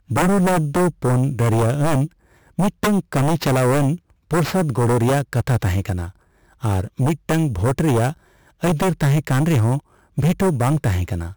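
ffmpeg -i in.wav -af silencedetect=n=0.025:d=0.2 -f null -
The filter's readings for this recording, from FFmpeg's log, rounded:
silence_start: 2.07
silence_end: 2.58 | silence_duration: 0.52
silence_start: 3.96
silence_end: 4.31 | silence_duration: 0.34
silence_start: 6.10
silence_end: 6.63 | silence_duration: 0.53
silence_start: 8.13
silence_end: 8.63 | silence_duration: 0.50
silence_start: 9.79
silence_end: 10.18 | silence_duration: 0.39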